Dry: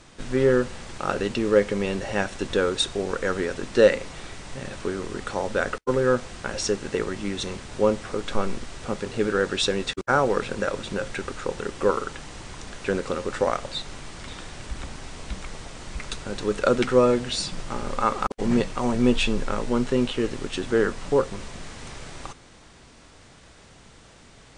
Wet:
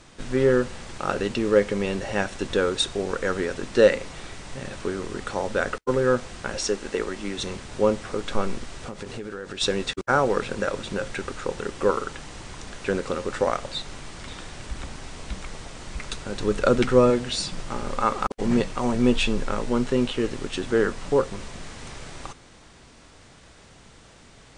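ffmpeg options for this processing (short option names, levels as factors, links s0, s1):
-filter_complex "[0:a]asettb=1/sr,asplit=3[s0][s1][s2];[s0]atrim=end=6.574[s3];[s1]atrim=start=6.57:end=7.38,asetpts=PTS-STARTPTS,afade=t=in:d=0.004:c=qsin,afade=t=out:st=0.806:d=0.004:c=qsin,equalizer=f=120:t=o:w=0.77:g=-15[s4];[s2]atrim=start=7.376[s5];[s3][s4]acrossfade=d=0.004:c1=hsin:c2=qsin[s6];[s6][s5]acrossfade=d=0.004:c1=qsin:c2=hsin,asplit=3[s7][s8][s9];[s7]afade=t=out:st=8.76:d=0.02[s10];[s8]acompressor=threshold=0.0316:ratio=12:attack=3.2:release=140:knee=1:detection=peak,afade=t=in:st=8.76:d=0.02,afade=t=out:st=9.6:d=0.02[s11];[s9]afade=t=in:st=9.6:d=0.02[s12];[s10][s11][s12]amix=inputs=3:normalize=0,asettb=1/sr,asplit=3[s13][s14][s15];[s13]atrim=end=16.404[s16];[s14]atrim=start=16.4:end=17.1,asetpts=PTS-STARTPTS,afade=t=in:d=0.004:c=qsin,afade=t=out:st=0.696:d=0.004:c=qsin,lowshelf=f=170:g=7[s17];[s15]atrim=start=17.096[s18];[s16][s17]acrossfade=d=0.004:c1=hsin:c2=qsin[s19];[s19][s18]acrossfade=d=0.004:c1=qsin:c2=hsin"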